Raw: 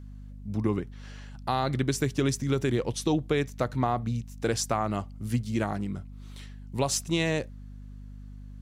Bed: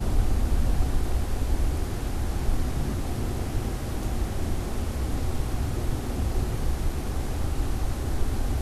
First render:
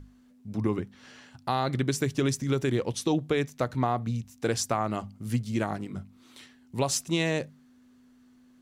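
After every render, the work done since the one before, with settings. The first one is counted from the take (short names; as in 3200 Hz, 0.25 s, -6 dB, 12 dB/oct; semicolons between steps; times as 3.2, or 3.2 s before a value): notches 50/100/150/200 Hz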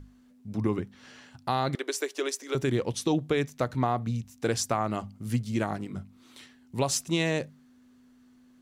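1.75–2.55 steep high-pass 350 Hz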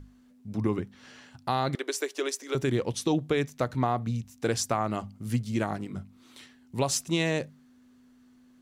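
nothing audible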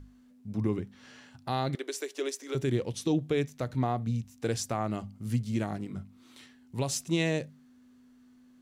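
dynamic EQ 1100 Hz, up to -5 dB, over -42 dBFS, Q 1.1; harmonic-percussive split percussive -5 dB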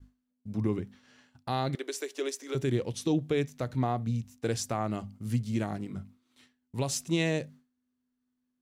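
expander -45 dBFS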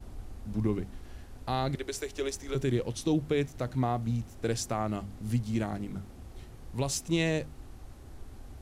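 add bed -20 dB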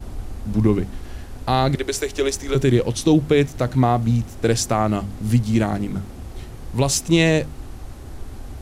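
gain +12 dB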